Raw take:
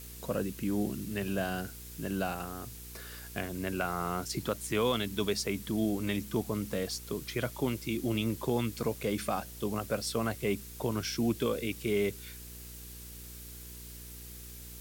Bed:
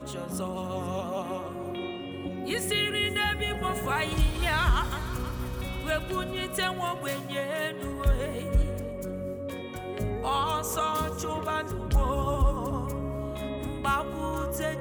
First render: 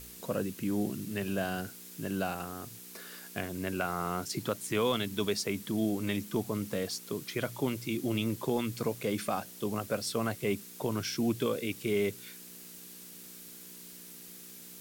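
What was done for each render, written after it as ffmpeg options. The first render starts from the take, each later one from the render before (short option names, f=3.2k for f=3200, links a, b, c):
-af "bandreject=f=60:t=h:w=4,bandreject=f=120:t=h:w=4"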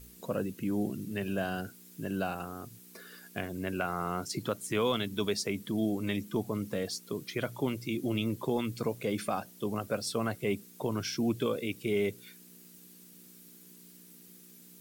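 -af "afftdn=nr=9:nf=-49"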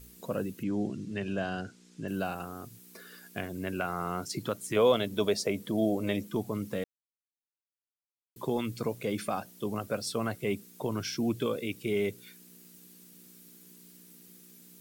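-filter_complex "[0:a]asettb=1/sr,asplit=3[a][b][c];[a]atrim=end=0.634[d];[b]atrim=start=0.63:end=2.08,asetpts=PTS-STARTPTS,afade=t=in:d=0.004:c=qsin,afade=t=out:st=1.446:d=0.004:c=qsin,lowpass=f=7.3k:w=0.5412,lowpass=f=7.3k:w=1.3066[e];[c]atrim=start=2.076[f];[d][e]acrossfade=d=0.004:c1=hsin:c2=qsin[g];[g][f]acrossfade=d=0.004:c1=qsin:c2=hsin,asettb=1/sr,asplit=3[h][i][j];[h]atrim=end=4.764[k];[i]atrim=start=4.76:end=6.27,asetpts=PTS-STARTPTS,afade=t=in:d=0.004:c=qsin,afade=t=out:st=1.506:d=0.004:c=qsin,equalizer=f=590:w=1.8:g=11.5[l];[j]atrim=start=6.266[m];[k][l]acrossfade=d=0.004:c1=hsin:c2=qsin[n];[n][m]acrossfade=d=0.004:c1=qsin:c2=hsin,asplit=3[o][p][q];[o]atrim=end=6.84,asetpts=PTS-STARTPTS,afade=t=out:st=6.836:d=0.004:c=hsin[r];[p]atrim=start=6.84:end=8.36,asetpts=PTS-STARTPTS,volume=0[s];[q]atrim=start=8.36,asetpts=PTS-STARTPTS,afade=t=in:d=0.004:c=hsin[t];[r][s][t]concat=n=3:v=0:a=1"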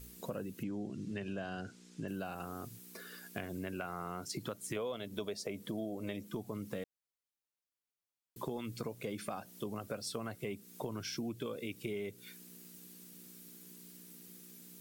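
-af "acompressor=threshold=-37dB:ratio=6"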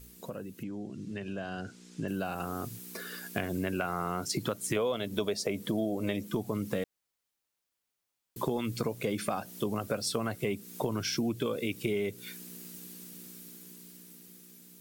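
-af "dynaudnorm=f=530:g=7:m=8.5dB"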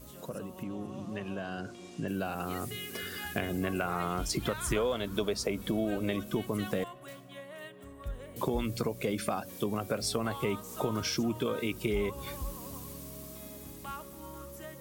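-filter_complex "[1:a]volume=-15dB[a];[0:a][a]amix=inputs=2:normalize=0"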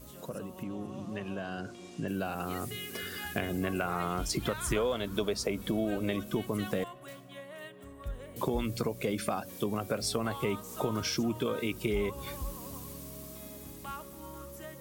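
-af anull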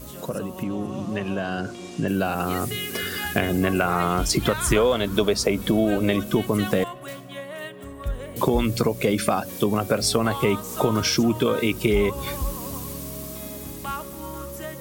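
-af "volume=10.5dB"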